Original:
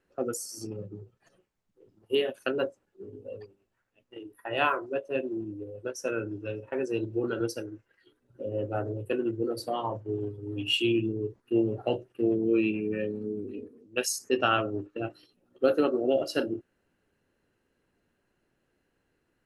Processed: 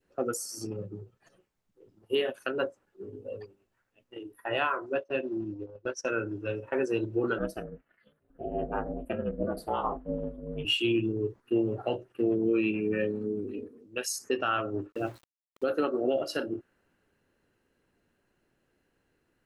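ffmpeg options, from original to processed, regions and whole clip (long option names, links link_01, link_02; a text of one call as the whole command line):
ffmpeg -i in.wav -filter_complex "[0:a]asettb=1/sr,asplit=3[link_01][link_02][link_03];[link_01]atrim=end=4.954[link_04];[link_02]atrim=start=4.95:end=6.1,asetpts=PTS-STARTPTS,afade=type=in:duration=0.004:curve=qsin,afade=type=out:start_time=1.146:duration=0.004:curve=qsin,agate=range=-15dB:threshold=-41dB:ratio=16:release=100:detection=peak,lowpass=frequency=5300:width_type=q:width=1.5,bandreject=frequency=450:width=7.7[link_05];[link_03]atrim=start=6.096[link_06];[link_04][link_05]acrossfade=duration=0.004:curve1=hsin:curve2=qsin[link_07];[link_07][link_06]acrossfade=duration=0.004:curve1=qsin:curve2=hsin,asettb=1/sr,asplit=3[link_08][link_09][link_10];[link_08]atrim=end=7.384[link_11];[link_09]atrim=start=7.38:end=10.65,asetpts=PTS-STARTPTS,afade=type=in:duration=0.004:curve=qsin,afade=type=out:start_time=3.266:duration=0.004:curve=qsin,equalizer=frequency=5600:width_type=o:width=1.1:gain=-13,aeval=exprs='val(0)*sin(2*PI*150*n/s)':channel_layout=same[link_12];[link_10]atrim=start=10.646[link_13];[link_11][link_12]acrossfade=duration=0.004:curve1=hsin:curve2=qsin[link_14];[link_14][link_13]acrossfade=duration=0.004:curve1=qsin:curve2=hsin,asettb=1/sr,asplit=3[link_15][link_16][link_17];[link_15]atrim=end=14.924[link_18];[link_16]atrim=start=14.92:end=15.64,asetpts=PTS-STARTPTS,afade=type=in:duration=0.004:curve=qsin,afade=type=out:start_time=0.716:duration=0.004:curve=qsin,equalizer=frequency=2500:width_type=o:width=2.2:gain=-5.5,bandreject=frequency=58.71:width_type=h:width=4,bandreject=frequency=117.42:width_type=h:width=4,bandreject=frequency=176.13:width_type=h:width=4,bandreject=frequency=234.84:width_type=h:width=4,bandreject=frequency=293.55:width_type=h:width=4,bandreject=frequency=352.26:width_type=h:width=4,bandreject=frequency=410.97:width_type=h:width=4,aeval=exprs='val(0)*gte(abs(val(0)),0.00316)':channel_layout=same[link_19];[link_17]atrim=start=15.636[link_20];[link_18][link_19]acrossfade=duration=0.004:curve1=hsin:curve2=qsin[link_21];[link_21][link_20]acrossfade=duration=0.004:curve1=qsin:curve2=hsin,adynamicequalizer=threshold=0.00562:dfrequency=1300:dqfactor=0.87:tfrequency=1300:tqfactor=0.87:attack=5:release=100:ratio=0.375:range=3:mode=boostabove:tftype=bell,alimiter=limit=-18.5dB:level=0:latency=1:release=280,volume=1dB" out.wav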